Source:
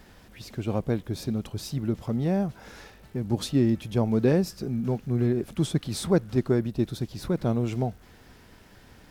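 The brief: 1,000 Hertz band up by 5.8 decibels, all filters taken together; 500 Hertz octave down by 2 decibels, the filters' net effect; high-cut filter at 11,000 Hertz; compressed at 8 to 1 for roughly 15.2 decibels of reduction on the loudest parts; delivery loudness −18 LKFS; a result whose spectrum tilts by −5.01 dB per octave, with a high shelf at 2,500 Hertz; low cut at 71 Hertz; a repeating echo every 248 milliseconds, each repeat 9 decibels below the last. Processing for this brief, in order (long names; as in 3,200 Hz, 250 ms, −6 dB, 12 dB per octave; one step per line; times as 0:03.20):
high-pass filter 71 Hz
low-pass filter 11,000 Hz
parametric band 500 Hz −5 dB
parametric band 1,000 Hz +9 dB
high-shelf EQ 2,500 Hz +6.5 dB
downward compressor 8 to 1, threshold −34 dBFS
repeating echo 248 ms, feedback 35%, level −9 dB
level +20.5 dB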